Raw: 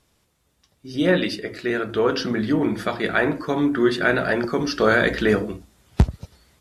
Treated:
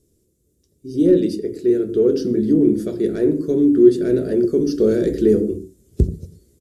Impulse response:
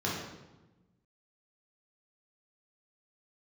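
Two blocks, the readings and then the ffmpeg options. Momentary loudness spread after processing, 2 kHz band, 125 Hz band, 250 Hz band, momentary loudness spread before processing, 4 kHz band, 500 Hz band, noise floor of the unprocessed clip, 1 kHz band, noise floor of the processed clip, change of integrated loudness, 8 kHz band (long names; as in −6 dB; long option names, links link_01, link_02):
9 LU, below −20 dB, +0.5 dB, +6.5 dB, 8 LU, below −10 dB, +5.5 dB, −67 dBFS, below −20 dB, −65 dBFS, +4.0 dB, can't be measured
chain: -filter_complex "[0:a]acontrast=90,firequalizer=gain_entry='entry(240,0);entry(380,7);entry(800,-27);entry(7200,-2)':delay=0.05:min_phase=1,asplit=2[link_01][link_02];[1:a]atrim=start_sample=2205,atrim=end_sample=6615[link_03];[link_02][link_03]afir=irnorm=-1:irlink=0,volume=-20dB[link_04];[link_01][link_04]amix=inputs=2:normalize=0,volume=-4.5dB"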